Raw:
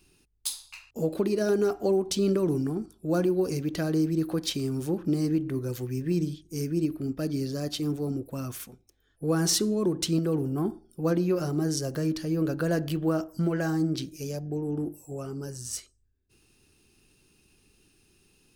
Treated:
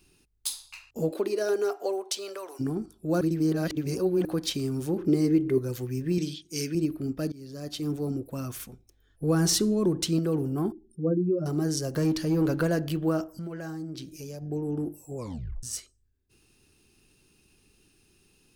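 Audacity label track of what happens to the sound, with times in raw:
1.100000	2.590000	high-pass filter 270 Hz → 680 Hz 24 dB per octave
3.210000	4.250000	reverse
4.960000	5.580000	hollow resonant body resonances 390/2,100 Hz, height 12 dB, ringing for 40 ms
6.180000	6.750000	meter weighting curve D
7.320000	7.970000	fade in, from −22.5 dB
8.560000	10.000000	low-shelf EQ 120 Hz +9 dB
10.720000	11.460000	expanding power law on the bin magnitudes exponent 2
11.960000	12.670000	leveller curve on the samples passes 1
13.260000	14.420000	downward compressor 2.5 to 1, threshold −38 dBFS
15.160000	15.160000	tape stop 0.47 s

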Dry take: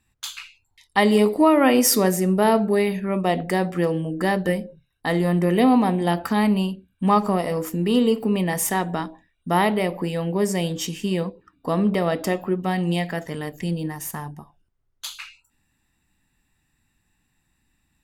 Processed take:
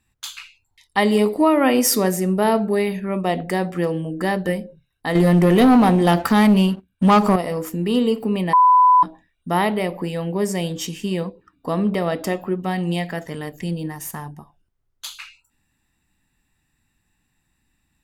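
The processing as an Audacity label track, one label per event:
5.150000	7.360000	leveller curve on the samples passes 2
8.530000	9.030000	beep over 1,000 Hz −9 dBFS

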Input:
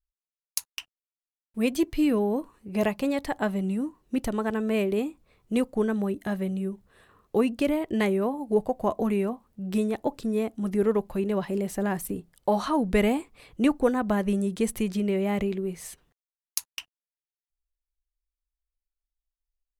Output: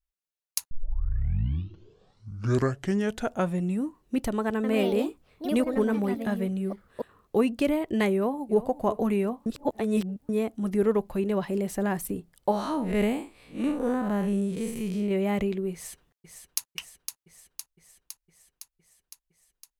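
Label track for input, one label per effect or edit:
0.710000	0.710000	tape start 3.12 s
4.550000	7.380000	delay with pitch and tempo change per echo 88 ms, each echo +3 semitones, echoes 2, each echo −6 dB
8.130000	8.620000	delay throw 360 ms, feedback 35%, level −15.5 dB
9.460000	10.290000	reverse
12.510000	15.110000	spectrum smeared in time width 127 ms
15.730000	16.680000	delay throw 510 ms, feedback 70%, level −6.5 dB

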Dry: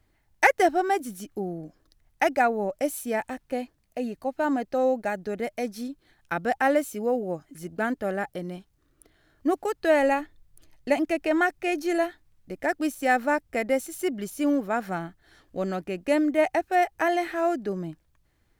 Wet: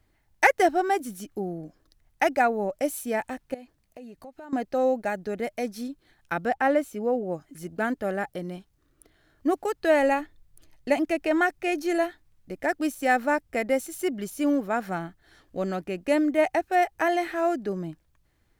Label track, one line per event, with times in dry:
3.540000	4.530000	downward compressor, threshold −41 dBFS
6.480000	7.320000	high-shelf EQ 3,900 Hz −9 dB

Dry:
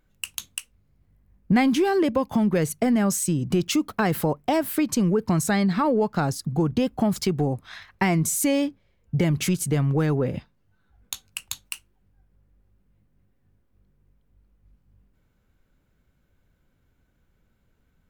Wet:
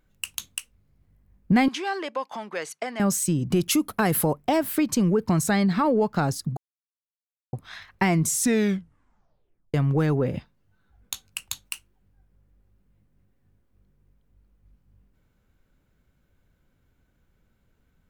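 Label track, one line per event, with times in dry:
1.680000	3.000000	band-pass filter 750–6,500 Hz
3.560000	4.380000	parametric band 11,000 Hz +13 dB 0.55 octaves
6.570000	7.530000	silence
8.250000	8.250000	tape stop 1.49 s

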